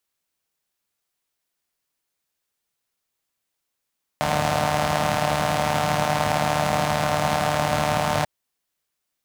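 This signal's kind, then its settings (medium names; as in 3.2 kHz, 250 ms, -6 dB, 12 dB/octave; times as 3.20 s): four-cylinder engine model, steady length 4.04 s, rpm 4500, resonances 110/180/660 Hz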